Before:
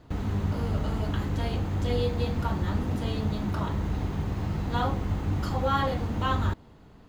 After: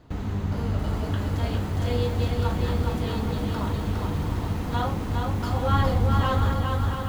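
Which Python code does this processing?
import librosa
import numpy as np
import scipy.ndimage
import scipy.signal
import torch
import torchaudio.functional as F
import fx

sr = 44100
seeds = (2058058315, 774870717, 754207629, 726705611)

y = fx.low_shelf(x, sr, hz=150.0, db=11.0, at=(5.68, 6.2))
y = fx.echo_feedback(y, sr, ms=411, feedback_pct=48, wet_db=-4.0)
y = fx.echo_crushed(y, sr, ms=683, feedback_pct=55, bits=7, wet_db=-8)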